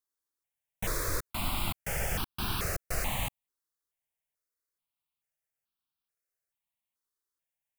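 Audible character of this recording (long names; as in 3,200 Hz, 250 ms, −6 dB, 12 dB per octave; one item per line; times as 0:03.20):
notches that jump at a steady rate 2.3 Hz 680–2,000 Hz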